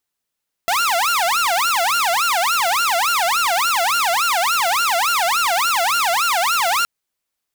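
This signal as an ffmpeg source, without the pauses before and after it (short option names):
-f lavfi -i "aevalsrc='0.224*(2*mod((1041*t-369/(2*PI*3.5)*sin(2*PI*3.5*t)),1)-1)':d=6.17:s=44100"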